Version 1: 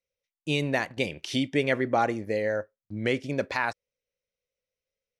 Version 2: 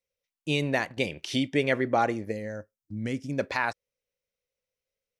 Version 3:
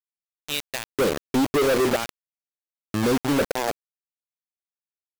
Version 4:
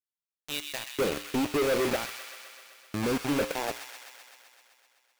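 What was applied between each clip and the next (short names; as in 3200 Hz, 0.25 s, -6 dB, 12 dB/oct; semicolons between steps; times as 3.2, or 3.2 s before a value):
spectral gain 2.32–3.39, 310–4800 Hz -10 dB
tilt shelf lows +8.5 dB, about 850 Hz; LFO band-pass square 0.51 Hz 460–4000 Hz; companded quantiser 2-bit; gain +6.5 dB
rattling part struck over -34 dBFS, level -25 dBFS; resonator 59 Hz, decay 0.49 s, harmonics odd, mix 60%; on a send: thin delay 0.128 s, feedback 73%, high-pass 1700 Hz, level -6 dB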